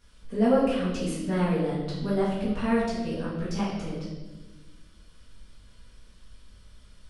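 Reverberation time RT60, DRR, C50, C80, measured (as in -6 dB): 1.2 s, -10.0 dB, 1.0 dB, 4.0 dB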